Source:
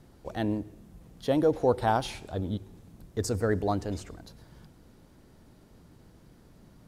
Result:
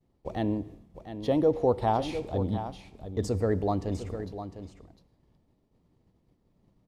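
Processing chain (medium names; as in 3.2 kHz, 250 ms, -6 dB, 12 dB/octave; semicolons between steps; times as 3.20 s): expander -43 dBFS; low-pass 2.7 kHz 6 dB/octave; peaking EQ 1.5 kHz -12.5 dB 0.29 oct; in parallel at -2 dB: compression, threshold -37 dBFS, peak gain reduction 17 dB; on the sum: feedback comb 95 Hz, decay 0.88 s, mix 40%; on a send: delay 704 ms -10.5 dB; on the sum: trim +3 dB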